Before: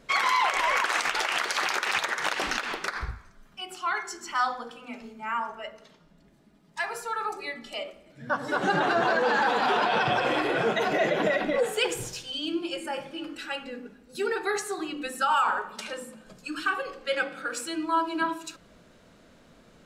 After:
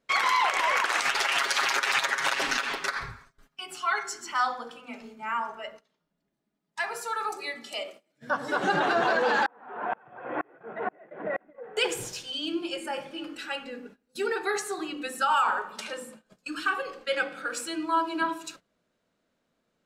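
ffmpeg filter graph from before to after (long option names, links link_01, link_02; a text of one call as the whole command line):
ffmpeg -i in.wav -filter_complex "[0:a]asettb=1/sr,asplit=3[link_01][link_02][link_03];[link_01]atrim=end=1.014[link_04];[link_02]atrim=start=1.01:end=4.24,asetpts=PTS-STARTPTS,afade=type=in:duration=0.004:curve=qsin,afade=type=out:start_time=3.226:duration=0.004:curve=qsin,equalizer=frequency=460:width=0.53:gain=-3,aecho=1:1:7.3:0.93,atrim=end_sample=142443[link_05];[link_03]atrim=start=4.236[link_06];[link_04][link_05]acrossfade=duration=0.004:curve1=hsin:curve2=qsin[link_07];[link_07][link_06]acrossfade=duration=0.004:curve1=qsin:curve2=hsin,asettb=1/sr,asplit=3[link_08][link_09][link_10];[link_08]atrim=end=7.014[link_11];[link_09]atrim=start=7.01:end=8.31,asetpts=PTS-STARTPTS,afade=type=in:duration=0.004:curve=qsin,afade=type=out:start_time=1.296:duration=0.004:curve=qsin,highpass=120,bass=frequency=250:gain=-3,treble=frequency=4000:gain=6[link_12];[link_10]atrim=start=8.306[link_13];[link_11][link_12]acrossfade=duration=0.004:curve1=hsin:curve2=qsin[link_14];[link_14][link_13]acrossfade=duration=0.004:curve1=qsin:curve2=hsin,asettb=1/sr,asplit=3[link_15][link_16][link_17];[link_15]atrim=end=9.464[link_18];[link_16]atrim=start=9.46:end=11.77,asetpts=PTS-STARTPTS,afade=type=in:duration=0.004:curve=qsin,afade=type=out:start_time=2.306:duration=0.004:curve=qsin,lowpass=frequency=1800:width=0.5412,lowpass=frequency=1800:width=1.3066,aeval=exprs='val(0)*pow(10,-36*if(lt(mod(-2.1*n/s,1),2*abs(-2.1)/1000),1-mod(-2.1*n/s,1)/(2*abs(-2.1)/1000),(mod(-2.1*n/s,1)-2*abs(-2.1)/1000)/(1-2*abs(-2.1)/1000))/20)':channel_layout=same[link_19];[link_17]atrim=start=11.766[link_20];[link_18][link_19]acrossfade=duration=0.004:curve1=hsin:curve2=qsin[link_21];[link_21][link_20]acrossfade=duration=0.004:curve1=qsin:curve2=hsin,agate=range=-19dB:threshold=-46dB:ratio=16:detection=peak,lowshelf=frequency=110:gain=-10.5" out.wav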